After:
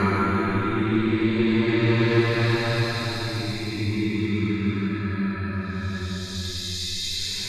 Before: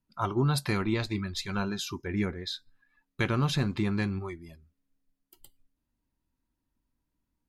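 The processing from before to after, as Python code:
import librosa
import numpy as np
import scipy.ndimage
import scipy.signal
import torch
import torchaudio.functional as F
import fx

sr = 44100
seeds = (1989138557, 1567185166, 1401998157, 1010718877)

y = fx.dynamic_eq(x, sr, hz=1200.0, q=1.0, threshold_db=-42.0, ratio=4.0, max_db=4)
y = fx.paulstretch(y, sr, seeds[0], factor=12.0, window_s=0.25, from_s=0.79)
y = y * 10.0 ** (6.0 / 20.0)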